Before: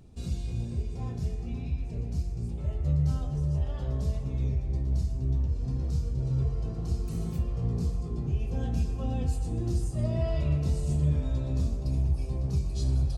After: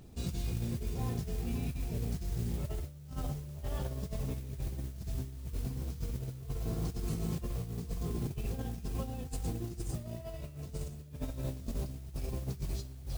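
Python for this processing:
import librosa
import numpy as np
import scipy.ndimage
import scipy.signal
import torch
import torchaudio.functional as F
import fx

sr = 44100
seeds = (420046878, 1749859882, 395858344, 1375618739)

y = fx.low_shelf(x, sr, hz=150.0, db=-5.0)
y = fx.over_compress(y, sr, threshold_db=-35.0, ratio=-0.5)
y = fx.mod_noise(y, sr, seeds[0], snr_db=19)
y = y * 10.0 ** (-1.0 / 20.0)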